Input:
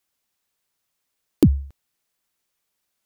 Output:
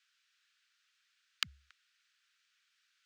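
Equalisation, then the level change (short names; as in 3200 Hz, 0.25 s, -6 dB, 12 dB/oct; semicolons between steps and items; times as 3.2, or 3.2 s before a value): elliptic high-pass 1400 Hz, stop band 50 dB; air absorption 150 m; notch 2100 Hz, Q 22; +11.0 dB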